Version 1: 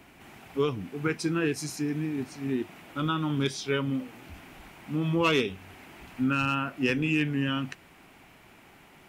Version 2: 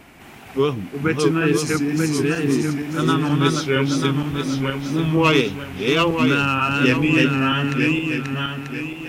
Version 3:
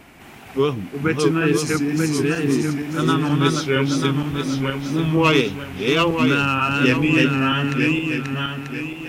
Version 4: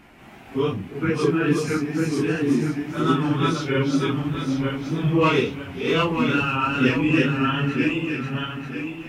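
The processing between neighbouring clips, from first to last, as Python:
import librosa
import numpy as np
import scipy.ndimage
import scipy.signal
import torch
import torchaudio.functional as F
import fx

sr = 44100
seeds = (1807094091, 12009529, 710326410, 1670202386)

y1 = fx.reverse_delay_fb(x, sr, ms=470, feedback_pct=59, wet_db=-1.5)
y1 = fx.wow_flutter(y1, sr, seeds[0], rate_hz=2.1, depth_cents=53.0)
y1 = F.gain(torch.from_numpy(y1), 7.5).numpy()
y2 = y1
y3 = fx.phase_scramble(y2, sr, seeds[1], window_ms=100)
y3 = fx.high_shelf(y3, sr, hz=4700.0, db=-9.0)
y3 = F.gain(torch.from_numpy(y3), -2.5).numpy()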